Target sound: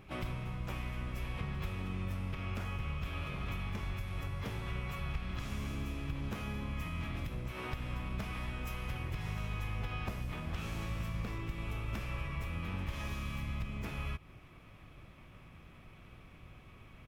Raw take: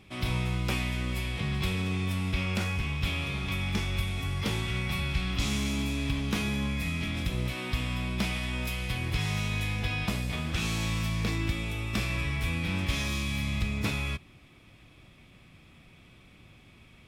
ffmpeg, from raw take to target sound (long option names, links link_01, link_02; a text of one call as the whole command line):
ffmpeg -i in.wav -filter_complex "[0:a]acompressor=threshold=-35dB:ratio=12,equalizer=frequency=250:width_type=o:width=1:gain=-4,equalizer=frequency=4000:width_type=o:width=1:gain=-9,equalizer=frequency=8000:width_type=o:width=1:gain=-8,asplit=4[link_01][link_02][link_03][link_04];[link_02]asetrate=22050,aresample=44100,atempo=2,volume=-3dB[link_05];[link_03]asetrate=52444,aresample=44100,atempo=0.840896,volume=-12dB[link_06];[link_04]asetrate=55563,aresample=44100,atempo=0.793701,volume=-15dB[link_07];[link_01][link_05][link_06][link_07]amix=inputs=4:normalize=0" out.wav